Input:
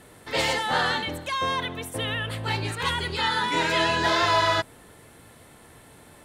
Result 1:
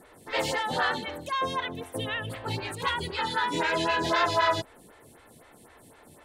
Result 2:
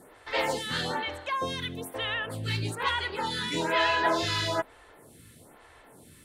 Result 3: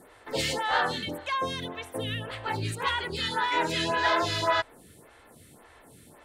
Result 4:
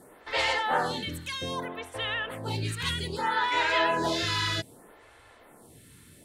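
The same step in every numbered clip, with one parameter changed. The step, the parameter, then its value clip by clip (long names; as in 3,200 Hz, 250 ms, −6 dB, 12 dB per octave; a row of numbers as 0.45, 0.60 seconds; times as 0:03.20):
phaser with staggered stages, speed: 3.9, 1.1, 1.8, 0.63 Hertz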